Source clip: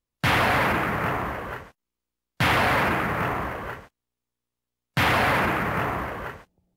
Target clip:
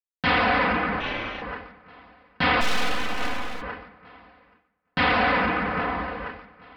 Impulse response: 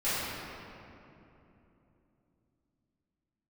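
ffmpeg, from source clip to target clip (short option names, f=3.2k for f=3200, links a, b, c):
-filter_complex "[0:a]aresample=11025,aresample=44100,asplit=2[a][b];[b]aecho=0:1:823|1646:0.0794|0.0278[c];[a][c]amix=inputs=2:normalize=0,asplit=3[d][e][f];[d]afade=t=out:st=2.6:d=0.02[g];[e]aeval=exprs='abs(val(0))':c=same,afade=t=in:st=2.6:d=0.02,afade=t=out:st=3.6:d=0.02[h];[f]afade=t=in:st=3.6:d=0.02[i];[g][h][i]amix=inputs=3:normalize=0,aecho=1:1:4:0.91,asettb=1/sr,asplit=3[j][k][l];[j]atrim=end=1.004[m];[k]atrim=start=1:end=1.42,asetpts=PTS-STARTPTS,afade=t=in:d=0.004:c=qsin,afade=t=out:st=0.416:d=0.004:c=qsin,aeval=exprs='val(0)*sin(2*PI*1300*n/s)':c=same[n];[l]atrim=start=1.416[o];[m][n]acrossfade=d=0.004:c1=hsin:c2=qsin[p];[p][o]acrossfade=d=0.004:c1=qsin:c2=hsin,agate=range=-33dB:threshold=-42dB:ratio=3:detection=peak,volume=-2.5dB"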